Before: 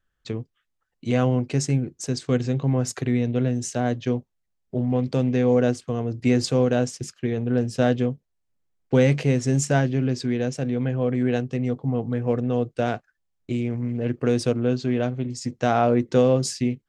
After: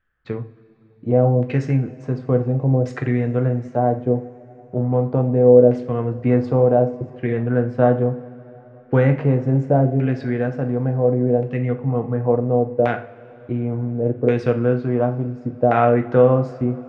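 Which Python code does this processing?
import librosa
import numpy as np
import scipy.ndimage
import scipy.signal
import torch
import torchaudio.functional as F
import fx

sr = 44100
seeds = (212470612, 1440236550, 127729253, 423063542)

y = fx.filter_lfo_lowpass(x, sr, shape='saw_down', hz=0.7, low_hz=530.0, high_hz=2200.0, q=1.8)
y = fx.rev_double_slope(y, sr, seeds[0], early_s=0.37, late_s=4.5, knee_db=-22, drr_db=5.0)
y = y * 10.0 ** (2.0 / 20.0)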